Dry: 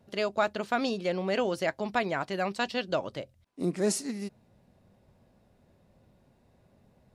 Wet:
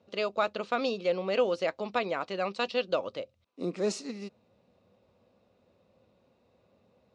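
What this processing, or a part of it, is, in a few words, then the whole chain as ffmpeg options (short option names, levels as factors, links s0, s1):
car door speaker: -af "highpass=94,equalizer=f=140:t=q:w=4:g=-9,equalizer=f=500:t=q:w=4:g=9,equalizer=f=1200:t=q:w=4:g=7,equalizer=f=1700:t=q:w=4:g=-4,equalizer=f=2600:t=q:w=4:g=6,equalizer=f=3900:t=q:w=4:g=5,lowpass=f=6900:w=0.5412,lowpass=f=6900:w=1.3066,volume=0.631"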